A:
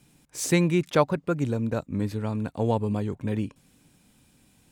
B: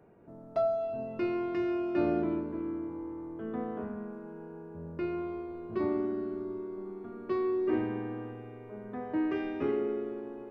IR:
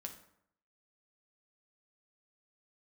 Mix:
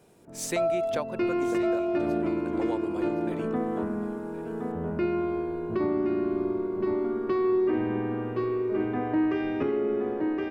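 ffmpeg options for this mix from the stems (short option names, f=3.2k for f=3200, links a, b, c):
-filter_complex "[0:a]highpass=320,volume=-4dB,asplit=2[a][b];[b]volume=-14dB[c];[1:a]dynaudnorm=f=130:g=7:m=8dB,volume=0.5dB,asplit=2[d][e];[e]volume=-7dB[f];[c][f]amix=inputs=2:normalize=0,aecho=0:1:1068:1[g];[a][d][g]amix=inputs=3:normalize=0,alimiter=limit=-18dB:level=0:latency=1:release=376"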